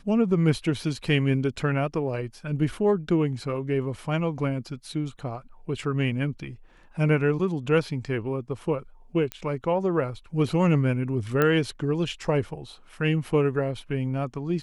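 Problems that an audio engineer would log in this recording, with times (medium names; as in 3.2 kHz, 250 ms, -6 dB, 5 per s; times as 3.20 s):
9.32 s: pop -15 dBFS
11.42 s: pop -10 dBFS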